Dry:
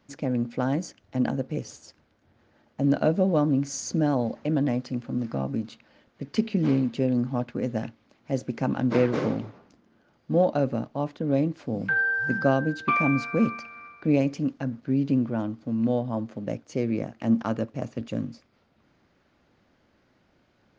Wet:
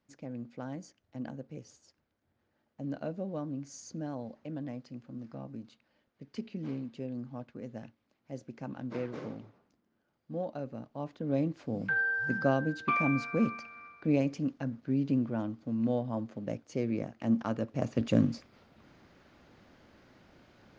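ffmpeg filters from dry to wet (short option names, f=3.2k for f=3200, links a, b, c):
-af "volume=5.5dB,afade=t=in:st=10.74:d=0.73:silence=0.354813,afade=t=in:st=17.61:d=0.64:silence=0.281838"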